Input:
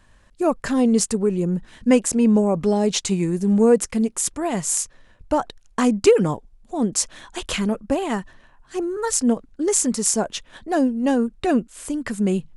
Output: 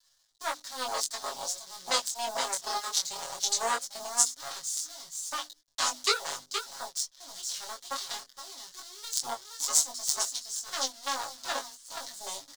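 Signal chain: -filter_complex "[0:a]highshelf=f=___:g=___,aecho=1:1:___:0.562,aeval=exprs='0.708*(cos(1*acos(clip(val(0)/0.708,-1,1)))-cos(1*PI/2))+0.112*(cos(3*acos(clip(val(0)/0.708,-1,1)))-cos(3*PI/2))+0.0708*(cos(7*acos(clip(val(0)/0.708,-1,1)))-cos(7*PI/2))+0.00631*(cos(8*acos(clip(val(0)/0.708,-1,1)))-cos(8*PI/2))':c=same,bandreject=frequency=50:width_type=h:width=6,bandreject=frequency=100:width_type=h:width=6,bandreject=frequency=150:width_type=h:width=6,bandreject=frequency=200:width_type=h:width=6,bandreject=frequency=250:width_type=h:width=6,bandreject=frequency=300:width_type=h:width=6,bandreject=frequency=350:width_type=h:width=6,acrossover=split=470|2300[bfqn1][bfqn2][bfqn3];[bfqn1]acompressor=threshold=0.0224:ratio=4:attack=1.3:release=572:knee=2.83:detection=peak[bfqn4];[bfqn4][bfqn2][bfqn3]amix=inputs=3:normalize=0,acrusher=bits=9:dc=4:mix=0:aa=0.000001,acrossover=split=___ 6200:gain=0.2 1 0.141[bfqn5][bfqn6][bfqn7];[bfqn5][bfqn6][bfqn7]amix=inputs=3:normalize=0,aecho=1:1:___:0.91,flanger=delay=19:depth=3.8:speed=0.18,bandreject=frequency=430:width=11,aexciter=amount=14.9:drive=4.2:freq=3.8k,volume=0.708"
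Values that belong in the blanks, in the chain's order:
5.9k, -11, 469, 550, 7.3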